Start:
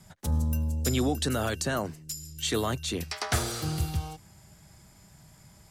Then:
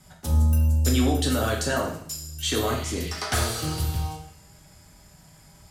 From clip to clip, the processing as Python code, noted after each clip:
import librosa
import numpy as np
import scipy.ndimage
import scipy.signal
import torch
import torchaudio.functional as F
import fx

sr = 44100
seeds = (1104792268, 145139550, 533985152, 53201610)

y = fx.spec_repair(x, sr, seeds[0], start_s=2.69, length_s=0.43, low_hz=1900.0, high_hz=4800.0, source='after')
y = fx.rev_double_slope(y, sr, seeds[1], early_s=0.6, late_s=2.1, knee_db=-28, drr_db=-1.5)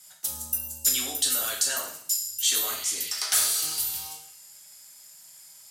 y = np.diff(x, prepend=0.0)
y = y * librosa.db_to_amplitude(8.0)